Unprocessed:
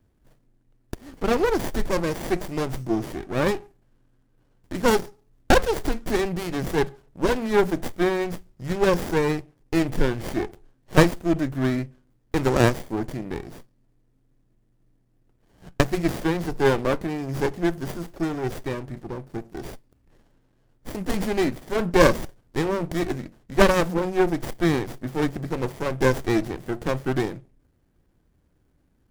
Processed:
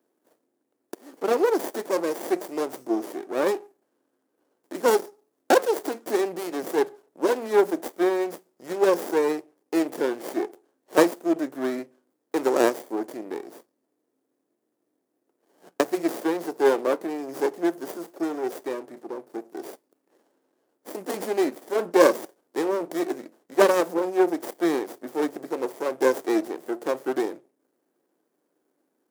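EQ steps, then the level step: HPF 320 Hz 24 dB/oct; bell 2700 Hz -8.5 dB 2.5 oct; +2.5 dB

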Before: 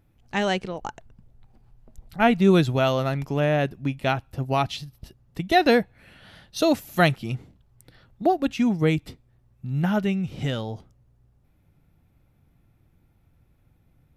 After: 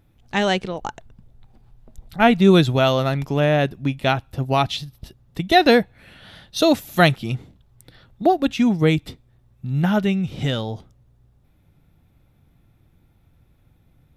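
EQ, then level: bell 3600 Hz +5.5 dB 0.25 oct; +4.0 dB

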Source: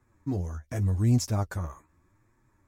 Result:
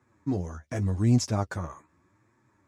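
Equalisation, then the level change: BPF 120–7400 Hz; +3.0 dB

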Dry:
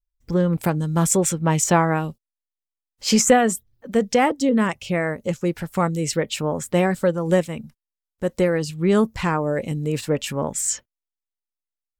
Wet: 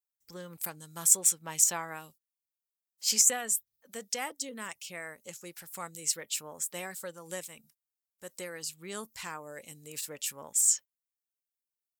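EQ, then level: HPF 50 Hz; pre-emphasis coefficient 0.97; bell 2900 Hz -3 dB 1.6 oct; 0.0 dB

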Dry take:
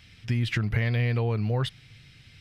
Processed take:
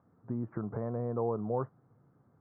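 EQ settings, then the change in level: HPF 260 Hz 12 dB/oct; steep low-pass 1200 Hz 48 dB/oct; 0.0 dB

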